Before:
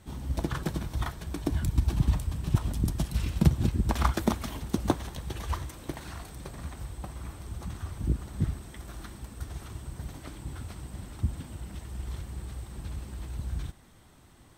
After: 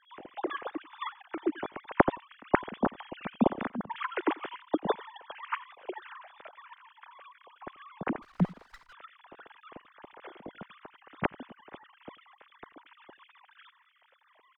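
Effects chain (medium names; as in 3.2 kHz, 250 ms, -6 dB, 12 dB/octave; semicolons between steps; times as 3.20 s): formants replaced by sine waves; peaking EQ 1.3 kHz +3.5 dB 2.9 oct; 3.57–4.12 s: compression 5:1, threshold -26 dBFS, peak gain reduction 12 dB; echo from a far wall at 15 m, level -23 dB; 8.22–8.93 s: sliding maximum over 9 samples; trim -6 dB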